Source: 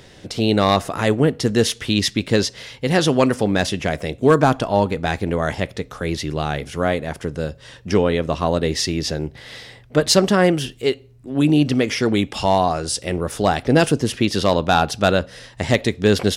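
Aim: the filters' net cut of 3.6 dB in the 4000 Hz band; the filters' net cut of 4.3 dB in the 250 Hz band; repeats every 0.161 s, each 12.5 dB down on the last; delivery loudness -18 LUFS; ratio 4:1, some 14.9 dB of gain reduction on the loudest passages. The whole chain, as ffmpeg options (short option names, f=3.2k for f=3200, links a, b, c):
-af "equalizer=f=250:t=o:g=-6,equalizer=f=4k:t=o:g=-4.5,acompressor=threshold=-31dB:ratio=4,aecho=1:1:161|322|483:0.237|0.0569|0.0137,volume=15.5dB"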